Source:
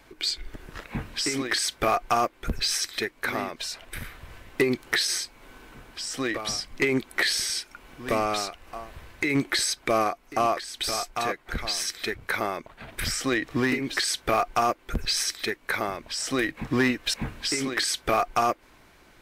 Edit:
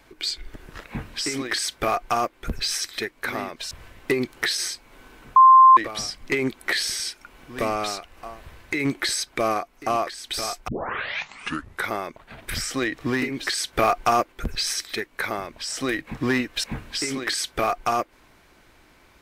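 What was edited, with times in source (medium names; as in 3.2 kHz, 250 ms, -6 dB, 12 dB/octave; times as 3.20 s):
3.71–4.21 s: delete
5.86–6.27 s: bleep 1.05 kHz -7.5 dBFS
11.18 s: tape start 1.20 s
14.23–14.82 s: gain +3.5 dB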